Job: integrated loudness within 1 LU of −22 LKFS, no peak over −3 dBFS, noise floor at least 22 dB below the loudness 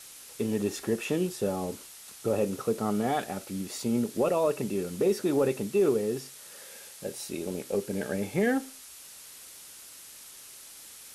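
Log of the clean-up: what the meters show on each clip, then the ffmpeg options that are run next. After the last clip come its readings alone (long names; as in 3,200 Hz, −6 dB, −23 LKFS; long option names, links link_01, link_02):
background noise floor −48 dBFS; target noise floor −52 dBFS; integrated loudness −29.5 LKFS; sample peak −15.0 dBFS; target loudness −22.0 LKFS
→ -af "afftdn=noise_reduction=6:noise_floor=-48"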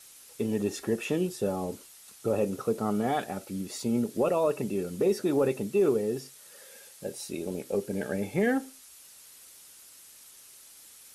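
background noise floor −52 dBFS; integrated loudness −29.5 LKFS; sample peak −15.5 dBFS; target loudness −22.0 LKFS
→ -af "volume=7.5dB"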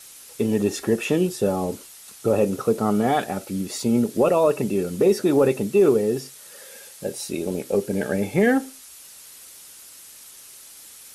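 integrated loudness −22.0 LKFS; sample peak −8.0 dBFS; background noise floor −45 dBFS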